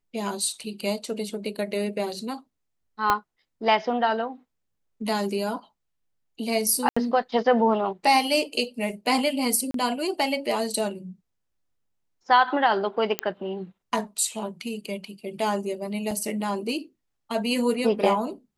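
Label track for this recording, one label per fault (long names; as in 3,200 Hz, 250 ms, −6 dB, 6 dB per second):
0.600000	0.600000	drop-out 3 ms
3.100000	3.100000	click −7 dBFS
6.890000	6.960000	drop-out 75 ms
9.710000	9.740000	drop-out 33 ms
13.190000	13.190000	click −7 dBFS
16.110000	16.110000	drop-out 4.1 ms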